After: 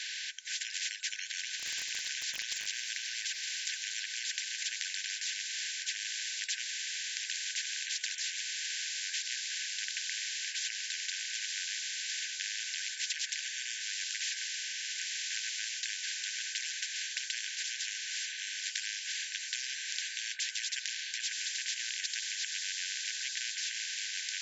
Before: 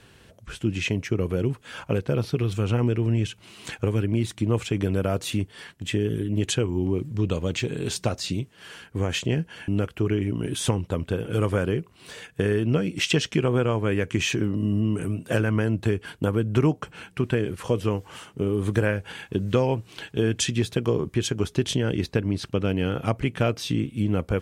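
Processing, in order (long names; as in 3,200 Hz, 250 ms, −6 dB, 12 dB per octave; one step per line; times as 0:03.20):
brick-wall band-pass 1,500–7,600 Hz
0:01.59–0:02.77: surface crackle 46 per second → 12 per second −52 dBFS
0:12.88–0:14.14: first difference
on a send: feedback delay with all-pass diffusion 1,082 ms, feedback 41%, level −13 dB
on the sum: every bin compressed towards the loudest bin 10 to 1
level −2 dB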